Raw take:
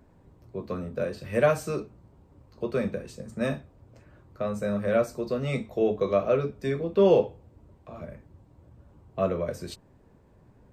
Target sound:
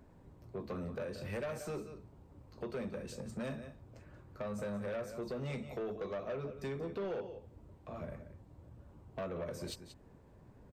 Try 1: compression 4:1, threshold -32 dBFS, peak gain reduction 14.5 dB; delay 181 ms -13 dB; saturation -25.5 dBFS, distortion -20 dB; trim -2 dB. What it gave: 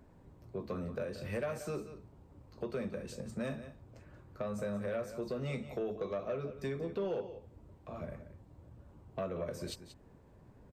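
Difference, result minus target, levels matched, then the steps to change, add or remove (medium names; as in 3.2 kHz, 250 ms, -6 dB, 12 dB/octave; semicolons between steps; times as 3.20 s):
saturation: distortion -8 dB
change: saturation -32 dBFS, distortion -12 dB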